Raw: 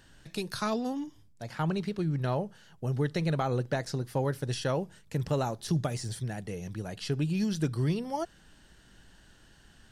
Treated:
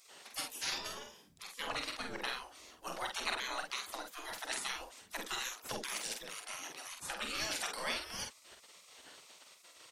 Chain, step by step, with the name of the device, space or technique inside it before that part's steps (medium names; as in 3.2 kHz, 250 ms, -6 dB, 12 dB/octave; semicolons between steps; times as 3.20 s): octave pedal (harmony voices -12 st -6 dB); spectral gate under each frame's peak -25 dB weak; doubling 47 ms -5 dB; trim +7.5 dB